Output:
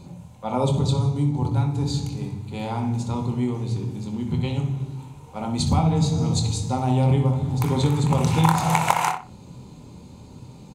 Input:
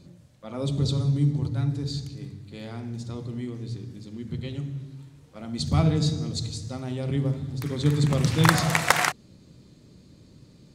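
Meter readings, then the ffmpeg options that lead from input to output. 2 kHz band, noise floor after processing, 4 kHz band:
−5.0 dB, −44 dBFS, −0.5 dB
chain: -filter_complex "[0:a]superequalizer=6b=0.631:9b=3.55:11b=0.447:13b=0.708:14b=0.501,acompressor=threshold=-26dB:ratio=5,asplit=2[link_01][link_02];[link_02]adelay=24,volume=-8.5dB[link_03];[link_01][link_03]amix=inputs=2:normalize=0,asplit=2[link_04][link_05];[link_05]adelay=62,lowpass=frequency=3000:poles=1,volume=-6.5dB,asplit=2[link_06][link_07];[link_07]adelay=62,lowpass=frequency=3000:poles=1,volume=0.28,asplit=2[link_08][link_09];[link_09]adelay=62,lowpass=frequency=3000:poles=1,volume=0.28,asplit=2[link_10][link_11];[link_11]adelay=62,lowpass=frequency=3000:poles=1,volume=0.28[link_12];[link_04][link_06][link_08][link_10][link_12]amix=inputs=5:normalize=0,volume=8dB"

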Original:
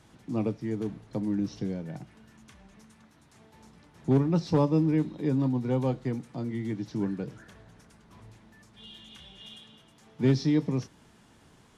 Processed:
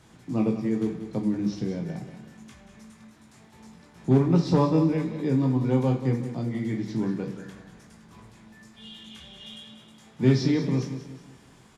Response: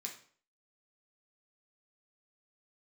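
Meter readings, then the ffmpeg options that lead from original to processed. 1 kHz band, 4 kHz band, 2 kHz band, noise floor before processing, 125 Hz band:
+4.0 dB, +4.0 dB, +4.5 dB, −59 dBFS, +4.0 dB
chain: -filter_complex "[0:a]aecho=1:1:185|370|555|740:0.282|0.116|0.0474|0.0194,asplit=2[link_01][link_02];[1:a]atrim=start_sample=2205,adelay=19[link_03];[link_02][link_03]afir=irnorm=-1:irlink=0,volume=0dB[link_04];[link_01][link_04]amix=inputs=2:normalize=0,volume=1.5dB"

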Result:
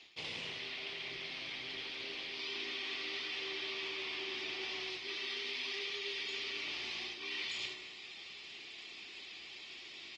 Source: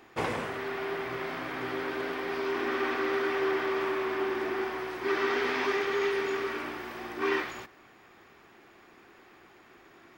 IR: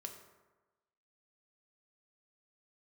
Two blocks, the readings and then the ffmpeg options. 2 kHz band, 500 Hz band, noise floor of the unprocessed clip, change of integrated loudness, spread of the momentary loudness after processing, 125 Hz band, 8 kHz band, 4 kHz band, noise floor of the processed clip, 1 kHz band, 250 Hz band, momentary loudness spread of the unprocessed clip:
−7.5 dB, −19.5 dB, −57 dBFS, −9.0 dB, 9 LU, −14.5 dB, −2.0 dB, +4.5 dB, −51 dBFS, −19.0 dB, −18.0 dB, 7 LU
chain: -filter_complex "[0:a]lowpass=frequency=4700:width=0.5412,lowpass=frequency=4700:width=1.3066,asplit=2[link_01][link_02];[link_02]adelay=32,volume=-12dB[link_03];[link_01][link_03]amix=inputs=2:normalize=0,aexciter=amount=12.2:drive=8.4:freq=2400,asplit=2[link_04][link_05];[1:a]atrim=start_sample=2205,highshelf=frequency=4900:gain=-5,adelay=85[link_06];[link_05][link_06]afir=irnorm=-1:irlink=0,volume=-5dB[link_07];[link_04][link_07]amix=inputs=2:normalize=0,adynamicequalizer=threshold=0.00316:dfrequency=160:dqfactor=2.1:tfrequency=160:tqfactor=2.1:attack=5:release=100:ratio=0.375:range=2.5:mode=boostabove:tftype=bell,areverse,acompressor=threshold=-31dB:ratio=10,areverse,volume=-7dB" -ar 48000 -c:a libopus -b:a 24k

